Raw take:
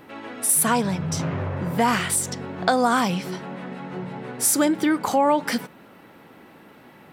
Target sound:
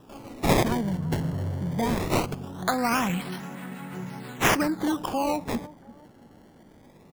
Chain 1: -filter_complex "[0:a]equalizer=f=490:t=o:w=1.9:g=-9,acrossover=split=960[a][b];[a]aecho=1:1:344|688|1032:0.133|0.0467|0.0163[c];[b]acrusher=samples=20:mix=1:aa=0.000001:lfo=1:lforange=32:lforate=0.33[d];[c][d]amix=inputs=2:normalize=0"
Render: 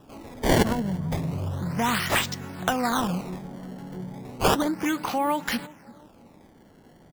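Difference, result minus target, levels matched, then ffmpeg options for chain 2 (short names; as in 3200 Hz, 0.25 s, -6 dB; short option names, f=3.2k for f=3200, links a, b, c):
decimation with a swept rate: distortion -7 dB
-filter_complex "[0:a]equalizer=f=490:t=o:w=1.9:g=-9,acrossover=split=960[a][b];[a]aecho=1:1:344|688|1032:0.133|0.0467|0.0163[c];[b]acrusher=samples=20:mix=1:aa=0.000001:lfo=1:lforange=32:lforate=0.2[d];[c][d]amix=inputs=2:normalize=0"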